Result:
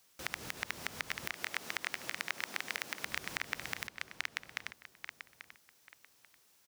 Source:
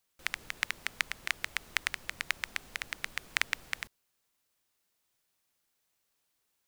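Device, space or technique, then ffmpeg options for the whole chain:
broadcast voice chain: -filter_complex "[0:a]asettb=1/sr,asplit=3[a][b][c];[a]atrim=end=1.334[d];[b]atrim=start=1.33:end=3.04,asetpts=PTS-STARTPTS,afade=t=in:d=0.004:c=qsin,afade=t=out:st=1.706:d=0.004:c=qsin,highpass=210[e];[c]atrim=start=3.036[f];[d][e]acrossfade=d=0.004:c1=hsin:c2=qsin[g];[g][f]acrossfade=d=0.004:c1=qsin:c2=hsin,highpass=79,asplit=2[h][i];[i]adelay=838,lowpass=f=4.1k:p=1,volume=-13dB,asplit=2[j][k];[k]adelay=838,lowpass=f=4.1k:p=1,volume=0.26,asplit=2[l][m];[m]adelay=838,lowpass=f=4.1k:p=1,volume=0.26[n];[h][j][l][n]amix=inputs=4:normalize=0,deesser=0.75,acompressor=threshold=-42dB:ratio=4,equalizer=f=5.6k:t=o:w=0.45:g=3.5,alimiter=limit=-24dB:level=0:latency=1:release=121,volume=10.5dB"

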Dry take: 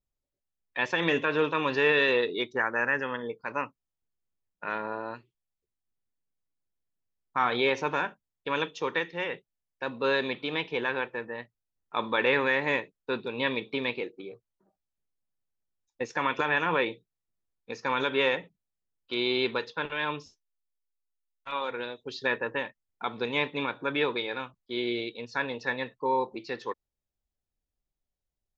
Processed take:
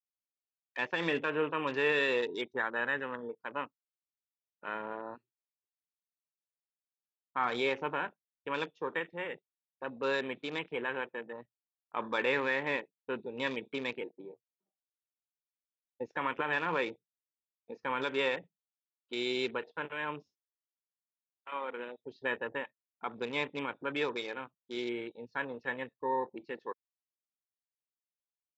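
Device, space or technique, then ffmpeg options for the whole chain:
over-cleaned archive recording: -af "highpass=120,lowpass=5k,afwtdn=0.0126,volume=-5.5dB"

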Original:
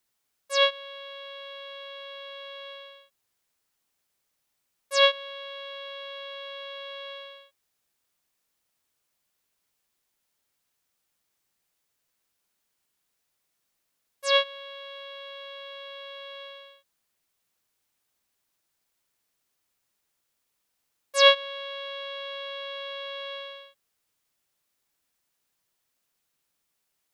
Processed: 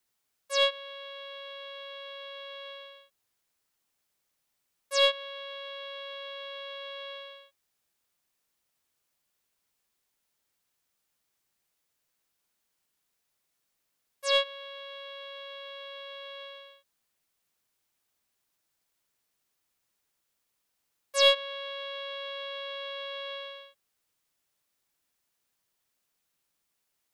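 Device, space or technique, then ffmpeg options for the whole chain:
one-band saturation: -filter_complex "[0:a]acrossover=split=520|2600[a][b][c];[b]asoftclip=type=tanh:threshold=-23.5dB[d];[a][d][c]amix=inputs=3:normalize=0,volume=-1.5dB"

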